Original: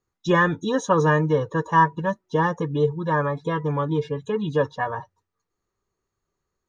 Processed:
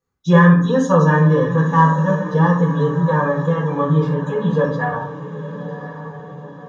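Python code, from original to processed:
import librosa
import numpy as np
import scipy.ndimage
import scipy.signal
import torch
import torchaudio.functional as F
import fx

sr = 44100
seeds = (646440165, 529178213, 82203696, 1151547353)

y = fx.echo_diffused(x, sr, ms=1073, feedback_pct=51, wet_db=-12)
y = fx.rev_fdn(y, sr, rt60_s=0.62, lf_ratio=1.45, hf_ratio=0.55, size_ms=35.0, drr_db=-7.5)
y = y * 10.0 ** (-5.0 / 20.0)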